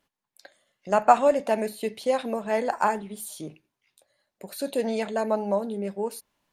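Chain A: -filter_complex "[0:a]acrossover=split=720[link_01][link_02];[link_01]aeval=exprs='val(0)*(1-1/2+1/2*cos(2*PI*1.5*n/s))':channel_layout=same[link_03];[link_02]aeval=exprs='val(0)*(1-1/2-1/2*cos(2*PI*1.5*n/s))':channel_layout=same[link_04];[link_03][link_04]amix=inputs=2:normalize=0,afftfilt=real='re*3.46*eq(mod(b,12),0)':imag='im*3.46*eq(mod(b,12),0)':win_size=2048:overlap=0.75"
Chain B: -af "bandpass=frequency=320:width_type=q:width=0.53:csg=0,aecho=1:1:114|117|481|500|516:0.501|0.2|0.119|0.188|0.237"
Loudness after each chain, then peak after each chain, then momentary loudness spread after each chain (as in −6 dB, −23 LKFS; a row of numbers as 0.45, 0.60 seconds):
−32.0, −27.0 LKFS; −10.5, −7.0 dBFS; 22, 15 LU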